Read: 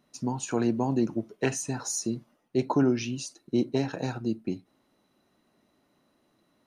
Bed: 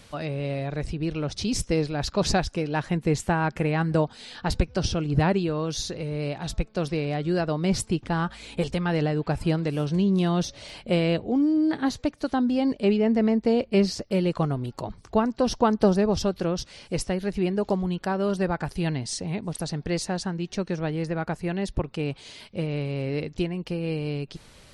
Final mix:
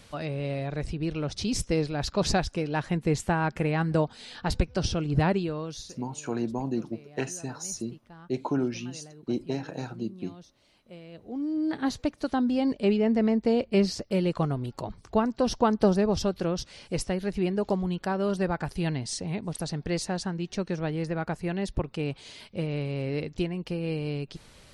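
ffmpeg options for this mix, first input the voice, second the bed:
-filter_complex "[0:a]adelay=5750,volume=-4dB[a];[1:a]volume=19.5dB,afade=t=out:st=5.29:d=0.75:silence=0.0841395,afade=t=in:st=11.12:d=0.81:silence=0.0841395[b];[a][b]amix=inputs=2:normalize=0"

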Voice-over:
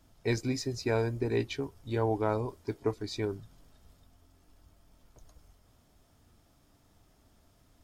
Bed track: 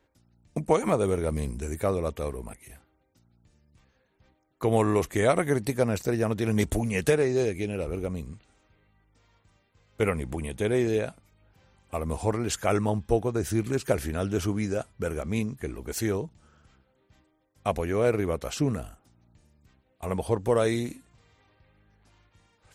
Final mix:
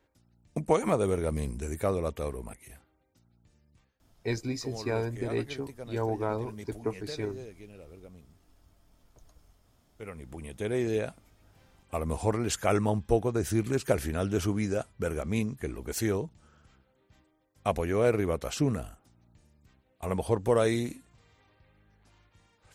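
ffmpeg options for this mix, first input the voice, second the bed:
-filter_complex "[0:a]adelay=4000,volume=-1.5dB[a];[1:a]volume=15.5dB,afade=t=out:st=3.72:d=0.28:silence=0.149624,afade=t=in:st=10.02:d=1.25:silence=0.133352[b];[a][b]amix=inputs=2:normalize=0"

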